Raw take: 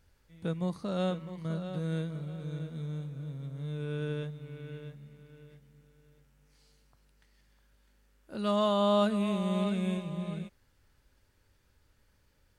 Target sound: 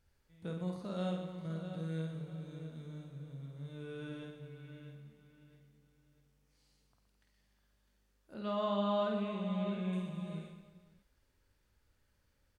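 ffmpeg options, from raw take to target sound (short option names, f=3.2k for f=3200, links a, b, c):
-filter_complex "[0:a]asettb=1/sr,asplit=3[a][b][c];[a]atrim=end=8.344[d];[b]atrim=start=8.34:end=9.93,asetpts=PTS-STARTPTS,afade=t=in:d=0.004:c=qsin,afade=t=out:st=1.586:d=0.004:c=qsin,lowpass=3.7k[e];[c]atrim=start=9.926[f];[d][e]acrossfade=d=0.004:c1=hsin:c2=qsin[g];[g][f]acrossfade=d=0.004:c1=qsin:c2=hsin,asplit=2[h][i];[i]aecho=0:1:50|120|218|355.2|547.3:0.631|0.398|0.251|0.158|0.1[j];[h][j]amix=inputs=2:normalize=0,volume=-8.5dB"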